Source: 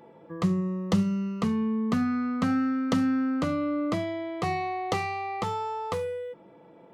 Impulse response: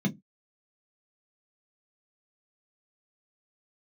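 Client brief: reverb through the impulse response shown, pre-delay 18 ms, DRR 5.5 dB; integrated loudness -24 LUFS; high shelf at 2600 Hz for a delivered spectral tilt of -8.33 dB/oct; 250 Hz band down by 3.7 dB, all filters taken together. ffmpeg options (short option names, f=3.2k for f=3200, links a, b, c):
-filter_complex "[0:a]equalizer=f=250:t=o:g=-4.5,highshelf=f=2.6k:g=6,asplit=2[a][b];[1:a]atrim=start_sample=2205,adelay=18[c];[b][c]afir=irnorm=-1:irlink=0,volume=-10.5dB[d];[a][d]amix=inputs=2:normalize=0,volume=-8.5dB"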